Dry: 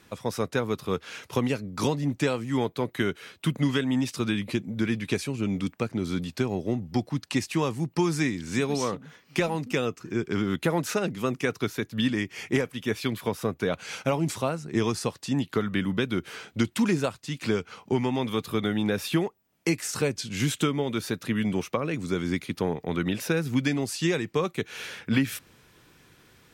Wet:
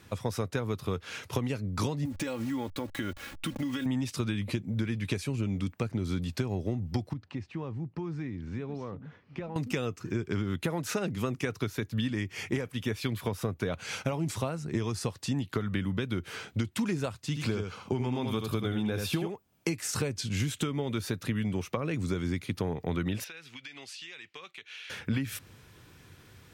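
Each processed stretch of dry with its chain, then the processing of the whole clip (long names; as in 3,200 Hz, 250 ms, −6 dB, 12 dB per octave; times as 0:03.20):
0:02.05–0:03.86: hold until the input has moved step −42 dBFS + comb filter 3.6 ms, depth 69% + downward compressor, threshold −30 dBFS
0:07.13–0:09.56: downward compressor 2 to 1, threshold −41 dBFS + head-to-tape spacing loss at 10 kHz 34 dB
0:17.27–0:19.74: notch filter 1,900 Hz, Q 9.5 + single-tap delay 80 ms −6.5 dB
0:23.24–0:24.90: resonant band-pass 2,900 Hz, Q 1.6 + downward compressor 10 to 1, threshold −40 dBFS
whole clip: parametric band 92 Hz +10.5 dB 0.97 octaves; downward compressor, threshold −27 dBFS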